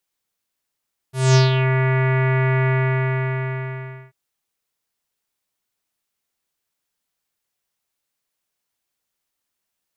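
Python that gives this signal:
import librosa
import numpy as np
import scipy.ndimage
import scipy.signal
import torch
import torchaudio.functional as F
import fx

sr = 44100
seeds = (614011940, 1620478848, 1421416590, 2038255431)

y = fx.sub_voice(sr, note=48, wave='square', cutoff_hz=2100.0, q=3.4, env_oct=2.5, env_s=0.54, attack_ms=220.0, decay_s=0.15, sustain_db=-6.5, release_s=1.43, note_s=1.56, slope=24)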